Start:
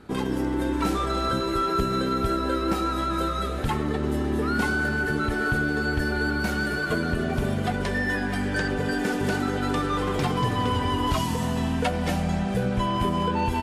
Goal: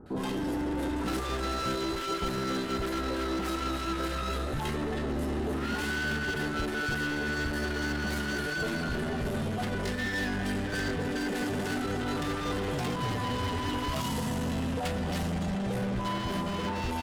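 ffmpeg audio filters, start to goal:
ffmpeg -i in.wav -filter_complex "[0:a]asoftclip=type=hard:threshold=-28.5dB,atempo=0.8,bandreject=frequency=2300:width=21,acrossover=split=1100[link_01][link_02];[link_02]adelay=60[link_03];[link_01][link_03]amix=inputs=2:normalize=0" out.wav

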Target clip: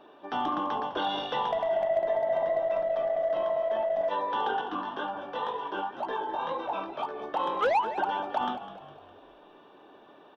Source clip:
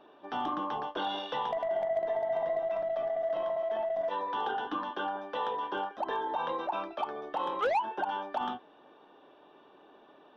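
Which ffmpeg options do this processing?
ffmpeg -i in.wav -filter_complex "[0:a]asettb=1/sr,asplit=3[link_01][link_02][link_03];[link_01]atrim=end=4.614[link_04];[link_02]atrim=start=4.61:end=7.21,asetpts=PTS-STARTPTS,afade=type=in:duration=0.004:curve=qsin,afade=type=out:start_time=2.596:duration=0.004:curve=qsin,flanger=delay=15.5:depth=6:speed=2[link_05];[link_03]atrim=start=7.206[link_06];[link_04][link_05]acrossfade=duration=0.004:curve1=hsin:curve2=qsin[link_07];[link_07][link_06]acrossfade=duration=0.004:curve1=qsin:curve2=hsin,asplit=6[link_08][link_09][link_10][link_11][link_12][link_13];[link_09]adelay=204,afreqshift=-51,volume=-13dB[link_14];[link_10]adelay=408,afreqshift=-102,volume=-19.4dB[link_15];[link_11]adelay=612,afreqshift=-153,volume=-25.8dB[link_16];[link_12]adelay=816,afreqshift=-204,volume=-32.1dB[link_17];[link_13]adelay=1020,afreqshift=-255,volume=-38.5dB[link_18];[link_08][link_14][link_15][link_16][link_17][link_18]amix=inputs=6:normalize=0,volume=3.5dB" out.wav

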